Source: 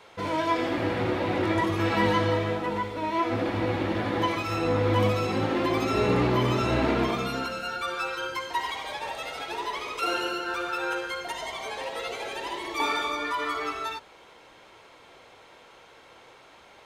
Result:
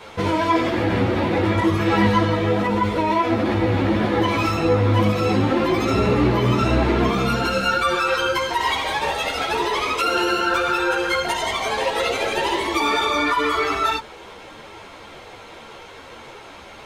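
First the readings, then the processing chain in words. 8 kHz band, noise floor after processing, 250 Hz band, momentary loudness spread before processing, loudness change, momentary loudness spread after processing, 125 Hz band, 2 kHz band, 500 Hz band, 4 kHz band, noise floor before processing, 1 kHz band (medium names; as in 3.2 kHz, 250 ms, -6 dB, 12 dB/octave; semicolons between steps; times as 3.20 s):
+9.0 dB, -41 dBFS, +8.0 dB, 10 LU, +7.5 dB, 21 LU, +8.0 dB, +8.0 dB, +6.5 dB, +8.5 dB, -53 dBFS, +7.5 dB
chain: bass shelf 230 Hz +6.5 dB; in parallel at 0 dB: compressor with a negative ratio -31 dBFS, ratio -1; on the sum: three-phase chorus; trim +5.5 dB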